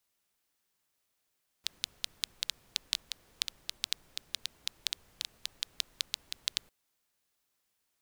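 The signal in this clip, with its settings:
rain-like ticks over hiss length 5.05 s, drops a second 6.1, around 3,800 Hz, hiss −23 dB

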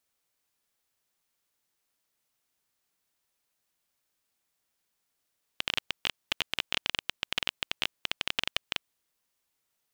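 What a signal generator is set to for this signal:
Geiger counter clicks 15 per second −9 dBFS 3.40 s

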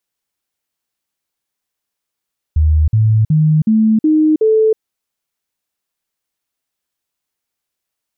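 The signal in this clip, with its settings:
stepped sweep 77.4 Hz up, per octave 2, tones 6, 0.32 s, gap 0.05 s −8 dBFS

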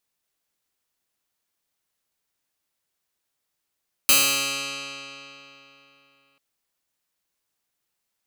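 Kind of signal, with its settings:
Karplus-Strong string C#3, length 2.29 s, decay 3.39 s, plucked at 0.08, bright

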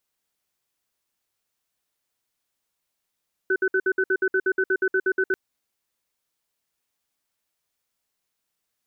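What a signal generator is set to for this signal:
tone pair in a cadence 379 Hz, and 1,510 Hz, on 0.06 s, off 0.06 s, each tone −21 dBFS 1.84 s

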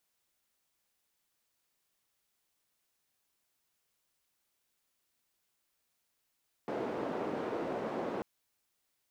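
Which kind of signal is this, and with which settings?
band-limited noise 290–490 Hz, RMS −36.5 dBFS 1.54 s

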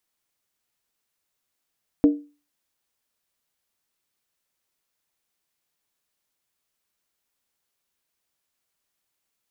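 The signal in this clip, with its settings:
struck skin, lowest mode 292 Hz, decay 0.33 s, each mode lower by 11 dB, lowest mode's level −9 dB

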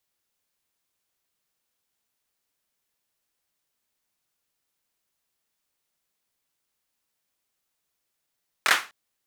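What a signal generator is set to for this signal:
synth clap length 0.25 s, bursts 3, apart 24 ms, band 1,500 Hz, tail 0.30 s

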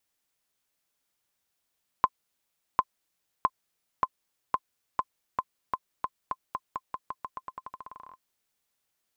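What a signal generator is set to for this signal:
bouncing ball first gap 0.75 s, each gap 0.88, 1,040 Hz, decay 48 ms −8.5 dBFS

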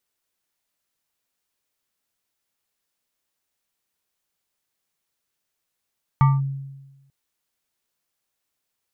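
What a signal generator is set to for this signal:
two-operator FM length 0.89 s, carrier 137 Hz, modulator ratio 7.59, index 0.61, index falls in 0.20 s linear, decay 1.14 s, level −10 dB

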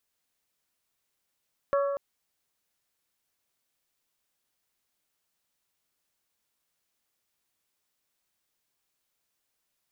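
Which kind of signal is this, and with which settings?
struck glass bell, length 0.24 s, lowest mode 561 Hz, modes 4, decay 1.77 s, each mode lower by 6 dB, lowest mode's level −21.5 dB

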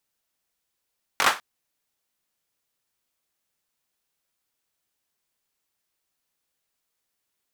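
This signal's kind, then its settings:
synth clap length 0.20 s, apart 21 ms, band 1,200 Hz, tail 0.26 s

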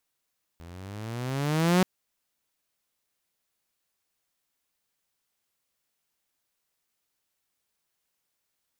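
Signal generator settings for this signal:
pitch glide with a swell saw, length 1.23 s, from 81.4 Hz, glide +14.5 semitones, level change +26 dB, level −15 dB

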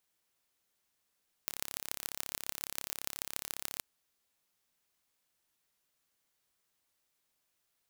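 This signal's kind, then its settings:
impulse train 34.5 per second, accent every 5, −6.5 dBFS 2.33 s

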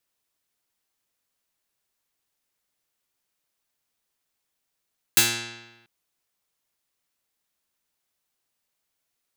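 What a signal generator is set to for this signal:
Karplus-Strong string A#2, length 0.69 s, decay 1.12 s, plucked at 0.19, medium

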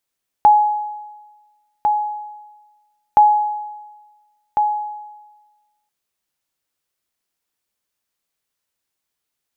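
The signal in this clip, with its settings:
ping with an echo 840 Hz, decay 1.27 s, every 2.72 s, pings 2, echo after 1.40 s, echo −6.5 dB −4.5 dBFS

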